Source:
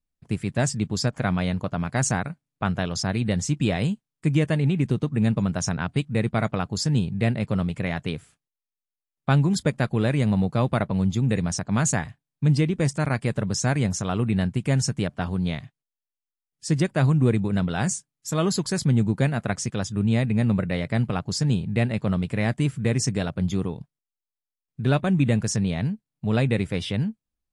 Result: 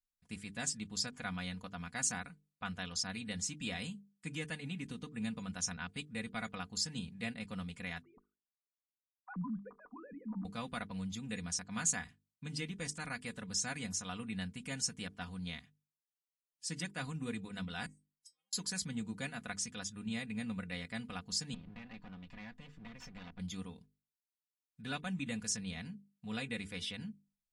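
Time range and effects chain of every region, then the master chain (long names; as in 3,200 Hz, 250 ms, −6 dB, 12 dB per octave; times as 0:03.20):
0:08.02–0:10.45: three sine waves on the formant tracks + transistor ladder low-pass 1,200 Hz, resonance 80% + spectral tilt −3.5 dB per octave
0:17.86–0:18.53: high-shelf EQ 4,200 Hz +11.5 dB + gate with flip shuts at −22 dBFS, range −35 dB + stiff-string resonator 260 Hz, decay 0.24 s, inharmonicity 0.002
0:21.54–0:23.39: lower of the sound and its delayed copy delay 1.1 ms + downward compressor 10 to 1, threshold −27 dBFS + high-frequency loss of the air 210 metres
whole clip: guitar amp tone stack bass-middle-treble 5-5-5; mains-hum notches 50/100/150/200/250/300/350/400/450 Hz; comb filter 4.1 ms, depth 74%; level −2 dB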